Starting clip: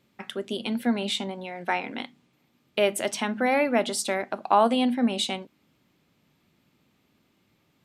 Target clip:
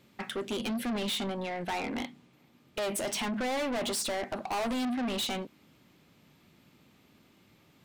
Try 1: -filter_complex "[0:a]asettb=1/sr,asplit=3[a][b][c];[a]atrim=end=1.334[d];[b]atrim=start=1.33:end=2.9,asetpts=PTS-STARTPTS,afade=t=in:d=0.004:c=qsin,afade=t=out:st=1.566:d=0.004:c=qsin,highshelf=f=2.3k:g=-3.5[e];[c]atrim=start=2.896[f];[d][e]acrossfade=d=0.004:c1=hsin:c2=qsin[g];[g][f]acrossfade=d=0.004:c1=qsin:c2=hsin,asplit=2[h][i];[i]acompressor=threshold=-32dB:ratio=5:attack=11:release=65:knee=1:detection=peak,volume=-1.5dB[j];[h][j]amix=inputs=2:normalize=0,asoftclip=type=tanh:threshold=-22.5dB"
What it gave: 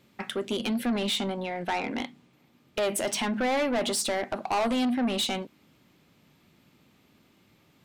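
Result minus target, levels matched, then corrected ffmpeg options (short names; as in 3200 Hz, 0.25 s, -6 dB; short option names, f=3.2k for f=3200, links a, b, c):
soft clip: distortion -4 dB
-filter_complex "[0:a]asettb=1/sr,asplit=3[a][b][c];[a]atrim=end=1.334[d];[b]atrim=start=1.33:end=2.9,asetpts=PTS-STARTPTS,afade=t=in:d=0.004:c=qsin,afade=t=out:st=1.566:d=0.004:c=qsin,highshelf=f=2.3k:g=-3.5[e];[c]atrim=start=2.896[f];[d][e]acrossfade=d=0.004:c1=hsin:c2=qsin[g];[g][f]acrossfade=d=0.004:c1=qsin:c2=hsin,asplit=2[h][i];[i]acompressor=threshold=-32dB:ratio=5:attack=11:release=65:knee=1:detection=peak,volume=-1.5dB[j];[h][j]amix=inputs=2:normalize=0,asoftclip=type=tanh:threshold=-29.5dB"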